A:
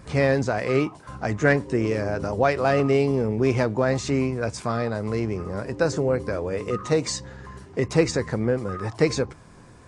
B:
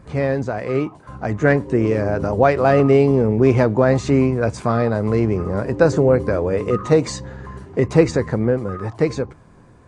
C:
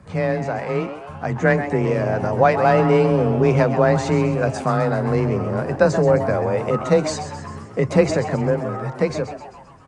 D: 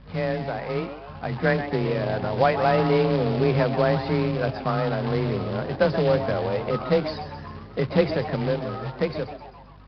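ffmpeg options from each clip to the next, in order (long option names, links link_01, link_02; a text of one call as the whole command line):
ffmpeg -i in.wav -af "highshelf=frequency=2100:gain=-9.5,bandreject=frequency=5300:width=16,dynaudnorm=framelen=220:gausssize=13:maxgain=9dB,volume=1dB" out.wav
ffmpeg -i in.wav -filter_complex "[0:a]equalizer=frequency=290:width=1.8:gain=-6.5,afreqshift=22,asplit=7[link_01][link_02][link_03][link_04][link_05][link_06][link_07];[link_02]adelay=131,afreqshift=130,volume=-11dB[link_08];[link_03]adelay=262,afreqshift=260,volume=-16.4dB[link_09];[link_04]adelay=393,afreqshift=390,volume=-21.7dB[link_10];[link_05]adelay=524,afreqshift=520,volume=-27.1dB[link_11];[link_06]adelay=655,afreqshift=650,volume=-32.4dB[link_12];[link_07]adelay=786,afreqshift=780,volume=-37.8dB[link_13];[link_01][link_08][link_09][link_10][link_11][link_12][link_13]amix=inputs=7:normalize=0" out.wav
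ffmpeg -i in.wav -af "aeval=exprs='val(0)+0.00708*(sin(2*PI*50*n/s)+sin(2*PI*2*50*n/s)/2+sin(2*PI*3*50*n/s)/3+sin(2*PI*4*50*n/s)/4+sin(2*PI*5*50*n/s)/5)':channel_layout=same,acrusher=bits=3:mode=log:mix=0:aa=0.000001,aresample=11025,aresample=44100,volume=-5dB" out.wav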